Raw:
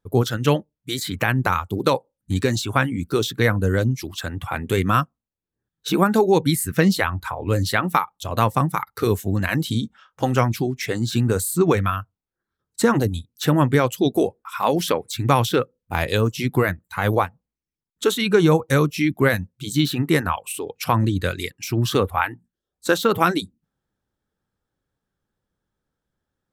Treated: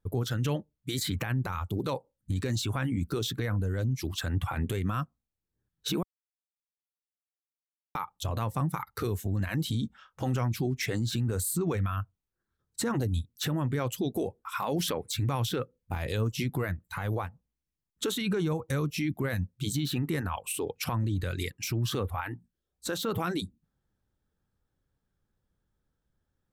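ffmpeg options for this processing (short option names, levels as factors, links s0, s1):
-filter_complex "[0:a]asplit=3[s0][s1][s2];[s0]atrim=end=6.03,asetpts=PTS-STARTPTS,afade=t=out:st=6.026:d=0.004:c=hsin[s3];[s1]atrim=start=6.03:end=7.95,asetpts=PTS-STARTPTS,volume=0[s4];[s2]atrim=start=7.95,asetpts=PTS-STARTPTS,afade=t=in:d=0.004:c=hsin[s5];[s3][s4][s5]concat=n=3:v=0:a=1,lowshelf=f=130:g=10,acompressor=threshold=0.126:ratio=6,alimiter=limit=0.126:level=0:latency=1:release=28,volume=0.668"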